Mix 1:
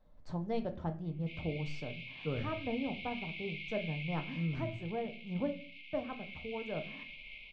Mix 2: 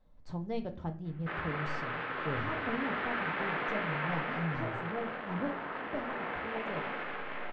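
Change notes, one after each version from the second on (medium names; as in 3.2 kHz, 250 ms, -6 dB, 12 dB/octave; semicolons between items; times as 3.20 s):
background: remove brick-wall FIR high-pass 2.1 kHz; master: add peaking EQ 620 Hz -4.5 dB 0.31 oct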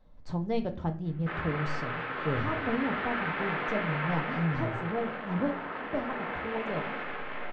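speech +6.0 dB; background: send +6.0 dB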